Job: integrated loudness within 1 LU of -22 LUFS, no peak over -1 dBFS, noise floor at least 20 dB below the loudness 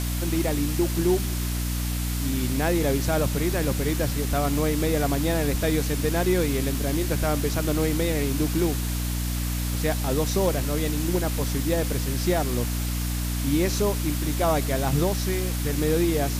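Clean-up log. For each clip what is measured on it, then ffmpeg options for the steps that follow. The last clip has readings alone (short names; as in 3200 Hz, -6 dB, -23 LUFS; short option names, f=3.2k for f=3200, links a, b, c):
hum 60 Hz; harmonics up to 300 Hz; hum level -25 dBFS; noise floor -27 dBFS; noise floor target -45 dBFS; loudness -25.0 LUFS; peak -10.5 dBFS; loudness target -22.0 LUFS
-> -af "bandreject=f=60:t=h:w=6,bandreject=f=120:t=h:w=6,bandreject=f=180:t=h:w=6,bandreject=f=240:t=h:w=6,bandreject=f=300:t=h:w=6"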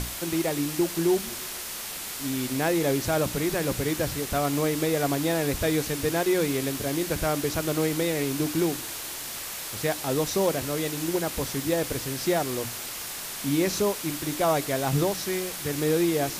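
hum none; noise floor -36 dBFS; noise floor target -47 dBFS
-> -af "afftdn=nr=11:nf=-36"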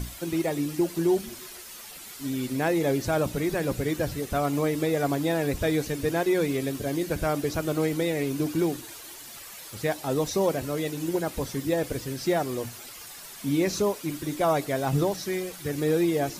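noise floor -43 dBFS; noise floor target -48 dBFS
-> -af "afftdn=nr=6:nf=-43"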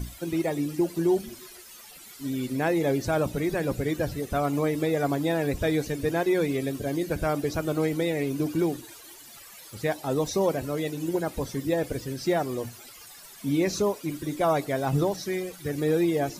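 noise floor -47 dBFS; noise floor target -48 dBFS
-> -af "afftdn=nr=6:nf=-47"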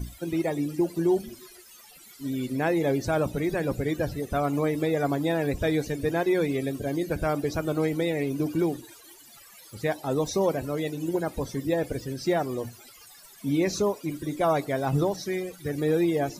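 noise floor -51 dBFS; loudness -27.5 LUFS; peak -14.0 dBFS; loudness target -22.0 LUFS
-> -af "volume=5.5dB"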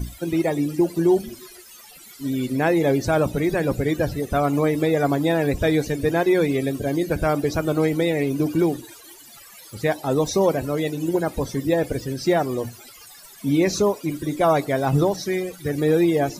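loudness -22.0 LUFS; peak -8.5 dBFS; noise floor -45 dBFS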